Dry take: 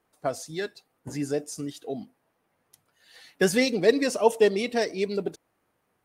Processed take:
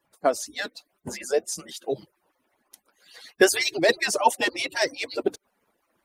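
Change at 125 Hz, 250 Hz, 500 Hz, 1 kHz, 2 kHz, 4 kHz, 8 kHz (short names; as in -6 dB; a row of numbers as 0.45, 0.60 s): -9.0, -4.0, -1.0, +6.0, +5.5, +5.5, +6.5 dB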